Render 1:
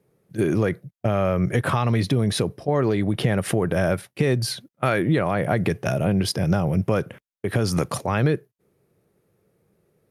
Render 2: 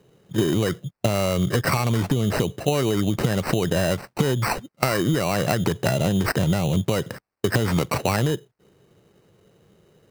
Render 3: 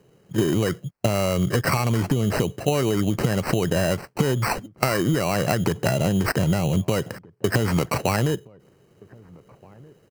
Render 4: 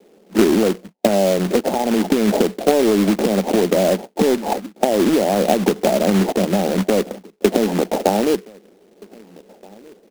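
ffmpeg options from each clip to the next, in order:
-af "acompressor=threshold=0.0501:ratio=10,acrusher=samples=13:mix=1:aa=0.000001,volume=2.66"
-filter_complex "[0:a]bandreject=f=3600:w=5.8,asplit=2[s0][s1];[s1]adelay=1574,volume=0.0562,highshelf=f=4000:g=-35.4[s2];[s0][s2]amix=inputs=2:normalize=0"
-af "asuperpass=centerf=410:order=20:qfactor=0.59,acrusher=bits=2:mode=log:mix=0:aa=0.000001,volume=2.51"

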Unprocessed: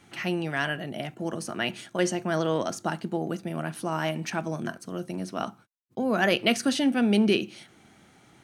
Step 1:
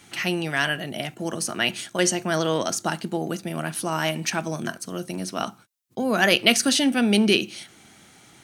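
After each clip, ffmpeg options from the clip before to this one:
-af "highshelf=f=2600:g=10.5,volume=1.26"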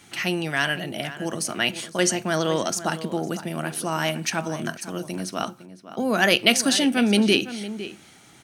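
-filter_complex "[0:a]asplit=2[s0][s1];[s1]adelay=507.3,volume=0.224,highshelf=f=4000:g=-11.4[s2];[s0][s2]amix=inputs=2:normalize=0"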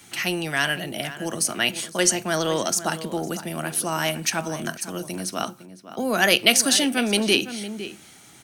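-filter_complex "[0:a]acrossover=split=280[s0][s1];[s0]asoftclip=type=tanh:threshold=0.0335[s2];[s2][s1]amix=inputs=2:normalize=0,crystalizer=i=1:c=0"

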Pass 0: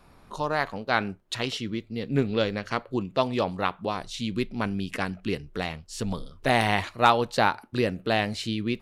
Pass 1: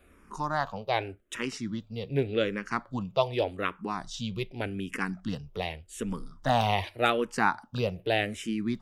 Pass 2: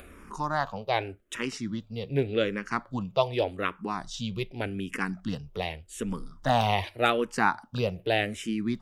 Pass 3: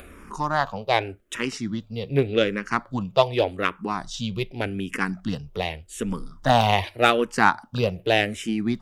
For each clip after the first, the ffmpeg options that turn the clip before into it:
-filter_complex "[0:a]bandreject=f=4200:w=8.5,asplit=2[s0][s1];[s1]afreqshift=-0.85[s2];[s0][s2]amix=inputs=2:normalize=1"
-af "acompressor=mode=upward:threshold=0.00891:ratio=2.5,volume=1.12"
-af "aeval=exprs='0.398*(cos(1*acos(clip(val(0)/0.398,-1,1)))-cos(1*PI/2))+0.0141*(cos(7*acos(clip(val(0)/0.398,-1,1)))-cos(7*PI/2))':c=same,volume=2.11"

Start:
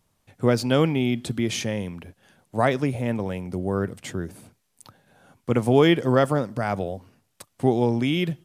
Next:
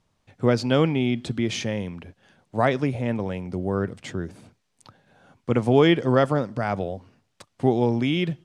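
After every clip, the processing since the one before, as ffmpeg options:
-af "lowpass=6100"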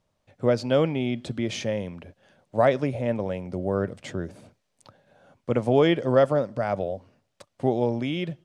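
-af "equalizer=f=580:t=o:w=0.45:g=9,dynaudnorm=f=200:g=11:m=1.58,volume=0.562"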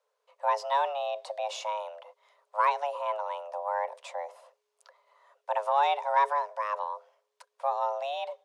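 -af "aeval=exprs='0.473*(cos(1*acos(clip(val(0)/0.473,-1,1)))-cos(1*PI/2))+0.0188*(cos(4*acos(clip(val(0)/0.473,-1,1)))-cos(4*PI/2))':c=same,afreqshift=420,volume=0.531"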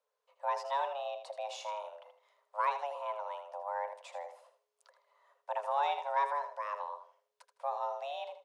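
-af "aecho=1:1:79|158|237:0.316|0.0822|0.0214,volume=0.447"

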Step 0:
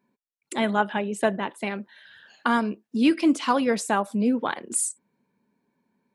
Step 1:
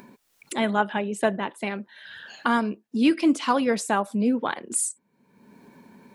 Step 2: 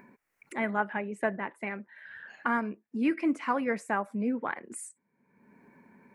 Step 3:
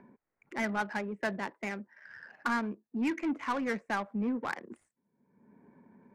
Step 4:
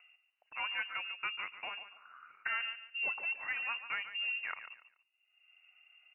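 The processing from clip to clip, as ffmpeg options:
-af "acompressor=mode=upward:threshold=0.0251:ratio=2.5"
-af "highshelf=f=2700:t=q:w=3:g=-8.5,volume=0.422"
-filter_complex "[0:a]acrossover=split=220|1200[s0][s1][s2];[s1]asoftclip=type=tanh:threshold=0.0266[s3];[s0][s3][s2]amix=inputs=3:normalize=0,adynamicsmooth=sensitivity=7.5:basefreq=1100"
-filter_complex "[0:a]asplit=2[s0][s1];[s1]aecho=0:1:143|286|429:0.266|0.0692|0.018[s2];[s0][s2]amix=inputs=2:normalize=0,lowpass=f=2600:t=q:w=0.5098,lowpass=f=2600:t=q:w=0.6013,lowpass=f=2600:t=q:w=0.9,lowpass=f=2600:t=q:w=2.563,afreqshift=-3000,volume=0.531"

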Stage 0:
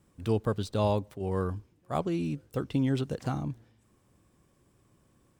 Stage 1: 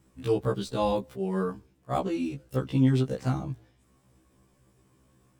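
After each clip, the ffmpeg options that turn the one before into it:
-af "afftfilt=real='re*1.73*eq(mod(b,3),0)':imag='im*1.73*eq(mod(b,3),0)':win_size=2048:overlap=0.75,volume=1.68"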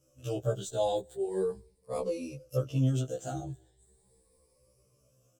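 -filter_complex "[0:a]afftfilt=real='re*pow(10,13/40*sin(2*PI*(0.9*log(max(b,1)*sr/1024/100)/log(2)-(0.39)*(pts-256)/sr)))':imag='im*pow(10,13/40*sin(2*PI*(0.9*log(max(b,1)*sr/1024/100)/log(2)-(0.39)*(pts-256)/sr)))':win_size=1024:overlap=0.75,equalizer=f=250:t=o:w=1:g=-12,equalizer=f=500:t=o:w=1:g=11,equalizer=f=1000:t=o:w=1:g=-8,equalizer=f=2000:t=o:w=1:g=-9,equalizer=f=8000:t=o:w=1:g=10,asplit=2[s0][s1];[s1]adelay=9.5,afreqshift=-0.89[s2];[s0][s2]amix=inputs=2:normalize=1,volume=0.75"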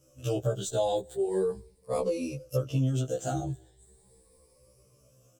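-af "acompressor=threshold=0.0282:ratio=3,volume=2"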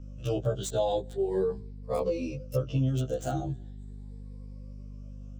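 -filter_complex "[0:a]aeval=exprs='val(0)+0.00891*(sin(2*PI*50*n/s)+sin(2*PI*2*50*n/s)/2+sin(2*PI*3*50*n/s)/3+sin(2*PI*4*50*n/s)/4+sin(2*PI*5*50*n/s)/5)':c=same,acrossover=split=330|5700[s0][s1][s2];[s2]aeval=exprs='val(0)*gte(abs(val(0)),0.00944)':c=same[s3];[s0][s1][s3]amix=inputs=3:normalize=0"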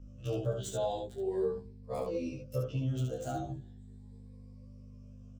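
-af "aecho=1:1:24|71:0.473|0.596,volume=0.447"

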